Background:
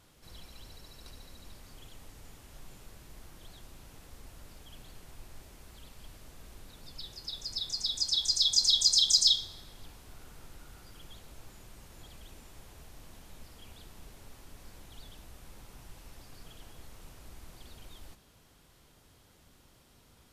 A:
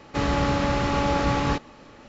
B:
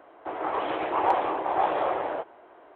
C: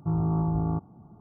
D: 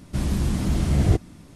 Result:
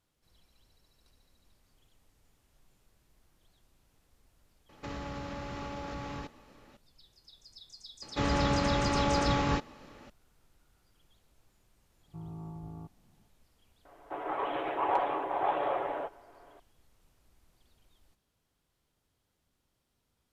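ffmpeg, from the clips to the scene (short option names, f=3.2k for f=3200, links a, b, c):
-filter_complex "[1:a]asplit=2[a][b];[0:a]volume=-17dB[c];[a]acompressor=threshold=-25dB:ratio=6:attack=3.2:release=140:knee=1:detection=peak[d];[2:a]aecho=1:1:7.1:0.38[e];[d]atrim=end=2.08,asetpts=PTS-STARTPTS,volume=-10.5dB,afade=t=in:d=0.004:c=hsin,afade=t=out:st=2.076:d=0.004:c=hsin,adelay=206829S[f];[b]atrim=end=2.08,asetpts=PTS-STARTPTS,volume=-5dB,afade=t=in:d=0.004:c=hsin,afade=t=out:st=2.076:d=0.004:c=hsin,adelay=353682S[g];[3:a]atrim=end=1.2,asetpts=PTS-STARTPTS,volume=-17.5dB,afade=t=in:d=0.004:c=hsin,afade=t=out:st=1.196:d=0.004:c=hsin,adelay=12080[h];[e]atrim=end=2.75,asetpts=PTS-STARTPTS,volume=-5.5dB,afade=t=in:d=0.004:c=hsin,afade=t=out:st=2.746:d=0.004:c=hsin,adelay=13850[i];[c][f][g][h][i]amix=inputs=5:normalize=0"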